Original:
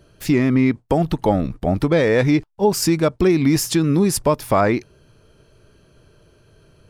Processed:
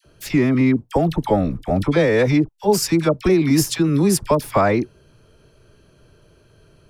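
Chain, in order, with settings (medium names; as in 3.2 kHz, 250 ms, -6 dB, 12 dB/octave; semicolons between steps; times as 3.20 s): phase dispersion lows, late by 53 ms, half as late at 980 Hz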